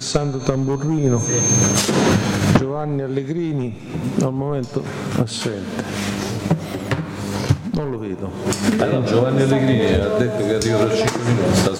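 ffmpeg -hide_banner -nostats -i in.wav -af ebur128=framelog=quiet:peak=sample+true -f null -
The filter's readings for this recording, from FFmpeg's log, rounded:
Integrated loudness:
  I:         -19.5 LUFS
  Threshold: -29.5 LUFS
Loudness range:
  LRA:         5.7 LU
  Threshold: -40.1 LUFS
  LRA low:   -23.4 LUFS
  LRA high:  -17.7 LUFS
Sample peak:
  Peak:       -3.9 dBFS
True peak:
  Peak:       -3.8 dBFS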